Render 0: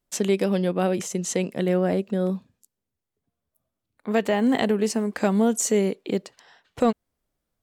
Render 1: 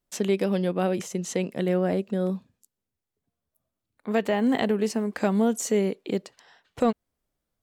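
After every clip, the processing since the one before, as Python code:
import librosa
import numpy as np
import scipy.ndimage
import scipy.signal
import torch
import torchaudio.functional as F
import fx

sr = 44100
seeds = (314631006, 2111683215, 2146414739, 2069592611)

y = fx.dynamic_eq(x, sr, hz=8000.0, q=0.98, threshold_db=-44.0, ratio=4.0, max_db=-5)
y = y * 10.0 ** (-2.0 / 20.0)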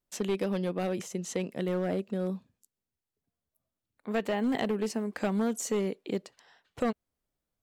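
y = fx.hpss(x, sr, part='harmonic', gain_db=3)
y = np.clip(y, -10.0 ** (-15.0 / 20.0), 10.0 ** (-15.0 / 20.0))
y = fx.hpss(y, sr, part='percussive', gain_db=4)
y = y * 10.0 ** (-8.5 / 20.0)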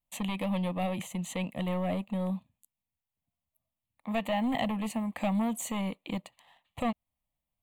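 y = fx.leveller(x, sr, passes=1)
y = fx.fixed_phaser(y, sr, hz=1500.0, stages=6)
y = y * 10.0 ** (2.0 / 20.0)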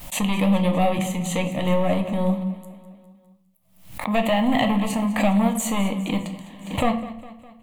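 y = fx.echo_feedback(x, sr, ms=204, feedback_pct=57, wet_db=-16.0)
y = fx.room_shoebox(y, sr, seeds[0], volume_m3=110.0, walls='mixed', distance_m=0.46)
y = fx.pre_swell(y, sr, db_per_s=93.0)
y = y * 10.0 ** (8.5 / 20.0)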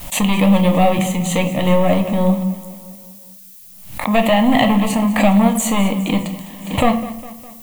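y = fx.dmg_noise_colour(x, sr, seeds[1], colour='violet', level_db=-48.0)
y = y * 10.0 ** (6.5 / 20.0)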